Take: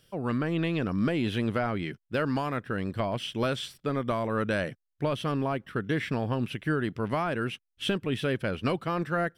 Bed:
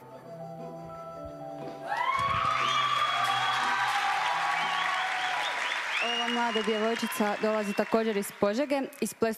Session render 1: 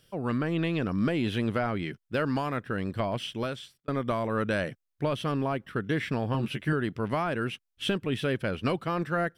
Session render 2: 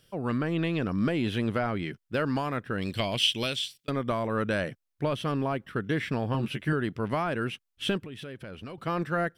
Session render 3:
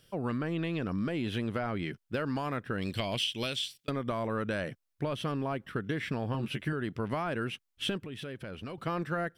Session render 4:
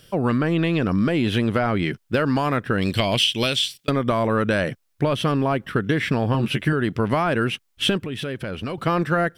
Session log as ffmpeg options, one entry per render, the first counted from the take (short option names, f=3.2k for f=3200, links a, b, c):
-filter_complex "[0:a]asettb=1/sr,asplit=3[a][b][c];[a]atrim=end=6.334[d];[b]atrim=start=6.33:end=6.73,asetpts=PTS-STARTPTS,afade=t=in:d=0.004:c=qsin,afade=t=out:st=0.396:d=0.004:c=qsin,asplit=2[e][f];[f]adelay=14,volume=-3.5dB[g];[e][g]amix=inputs=2:normalize=0,atrim=end_sample=17640[h];[c]atrim=start=6.726[i];[d][h]acrossfade=d=0.004:c1=hsin:c2=qsin[j];[j][i]acrossfade=d=0.004:c1=qsin:c2=hsin,asplit=2[k][l];[k]atrim=end=3.88,asetpts=PTS-STARTPTS,afade=t=out:st=3.2:d=0.68[m];[l]atrim=start=3.88,asetpts=PTS-STARTPTS,afade=t=in:d=0.004:c=hsin[n];[m][n]concat=n=2:v=0:a=1"
-filter_complex "[0:a]asplit=3[a][b][c];[a]afade=t=out:st=2.81:d=0.02[d];[b]highshelf=f=2k:t=q:w=1.5:g=11,afade=t=in:st=2.81:d=0.02,afade=t=out:st=3.89:d=0.02[e];[c]afade=t=in:st=3.89:d=0.02[f];[d][e][f]amix=inputs=3:normalize=0,asettb=1/sr,asplit=3[g][h][i];[g]atrim=end=8.004[j];[h]atrim=start=8:end=8.78,asetpts=PTS-STARTPTS,afade=t=in:d=0.004:c=qsin,afade=t=out:st=0.776:d=0.004:c=qsin,acompressor=threshold=-38dB:ratio=6:attack=3.2:release=140:knee=1:detection=peak[k];[i]atrim=start=8.776[l];[j][k]acrossfade=d=0.004:c1=hsin:c2=qsin[m];[m][l]acrossfade=d=0.004:c1=qsin:c2=hsin"
-af "acompressor=threshold=-29dB:ratio=6"
-af "volume=12dB"